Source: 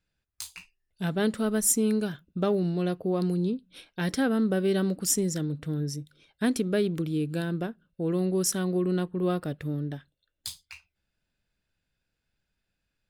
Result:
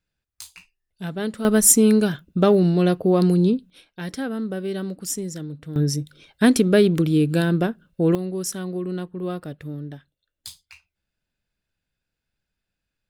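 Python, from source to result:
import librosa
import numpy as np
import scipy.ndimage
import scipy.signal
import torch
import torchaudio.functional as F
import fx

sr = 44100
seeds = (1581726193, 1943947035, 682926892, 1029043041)

y = fx.gain(x, sr, db=fx.steps((0.0, -1.0), (1.45, 9.5), (3.7, -2.5), (5.76, 10.0), (8.15, -1.5)))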